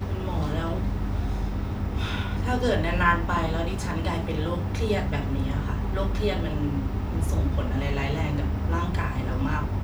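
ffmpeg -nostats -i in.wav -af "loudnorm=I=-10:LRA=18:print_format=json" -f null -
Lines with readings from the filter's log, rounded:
"input_i" : "-27.1",
"input_tp" : "-7.5",
"input_lra" : "1.7",
"input_thresh" : "-37.1",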